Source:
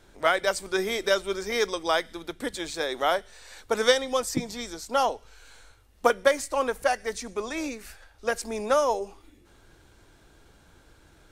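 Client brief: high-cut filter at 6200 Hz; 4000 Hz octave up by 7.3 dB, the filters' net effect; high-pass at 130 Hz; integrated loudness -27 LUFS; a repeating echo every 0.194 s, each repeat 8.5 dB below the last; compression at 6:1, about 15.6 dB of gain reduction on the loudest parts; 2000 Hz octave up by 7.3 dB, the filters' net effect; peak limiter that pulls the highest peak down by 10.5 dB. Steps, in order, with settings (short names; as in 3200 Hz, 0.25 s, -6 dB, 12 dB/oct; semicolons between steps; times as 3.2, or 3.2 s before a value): HPF 130 Hz; LPF 6200 Hz; bell 2000 Hz +8 dB; bell 4000 Hz +7 dB; compressor 6:1, threshold -29 dBFS; limiter -25.5 dBFS; feedback echo 0.194 s, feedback 38%, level -8.5 dB; gain +9.5 dB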